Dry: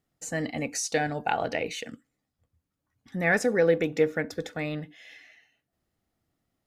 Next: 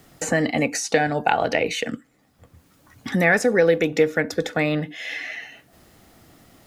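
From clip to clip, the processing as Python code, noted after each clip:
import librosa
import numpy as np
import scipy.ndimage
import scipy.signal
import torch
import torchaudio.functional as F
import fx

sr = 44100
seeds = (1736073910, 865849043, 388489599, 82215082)

y = fx.low_shelf(x, sr, hz=210.0, db=-3.5)
y = fx.band_squash(y, sr, depth_pct=70)
y = y * librosa.db_to_amplitude(7.5)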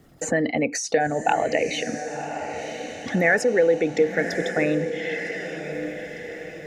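y = fx.envelope_sharpen(x, sr, power=1.5)
y = fx.echo_diffused(y, sr, ms=1070, feedback_pct=50, wet_db=-8.5)
y = y * librosa.db_to_amplitude(-1.5)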